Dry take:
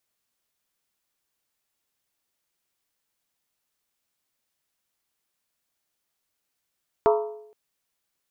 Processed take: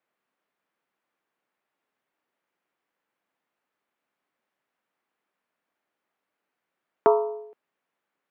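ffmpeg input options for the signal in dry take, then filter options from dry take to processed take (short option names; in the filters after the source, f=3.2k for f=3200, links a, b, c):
-f lavfi -i "aevalsrc='0.178*pow(10,-3*t/0.75)*sin(2*PI*426*t)+0.119*pow(10,-3*t/0.594)*sin(2*PI*679*t)+0.0794*pow(10,-3*t/0.513)*sin(2*PI*909.9*t)+0.0531*pow(10,-3*t/0.495)*sin(2*PI*978.1*t)+0.0355*pow(10,-3*t/0.46)*sin(2*PI*1130.2*t)+0.0237*pow(10,-3*t/0.439)*sin(2*PI*1243.1*t)+0.0158*pow(10,-3*t/0.422)*sin(2*PI*1344.5*t)':d=0.47:s=44100"
-filter_complex "[0:a]acrossover=split=170 2400:gain=0.0708 1 0.0794[a][b][c];[a][b][c]amix=inputs=3:normalize=0,asplit=2[d][e];[e]acompressor=threshold=-29dB:ratio=6,volume=0dB[f];[d][f]amix=inputs=2:normalize=0"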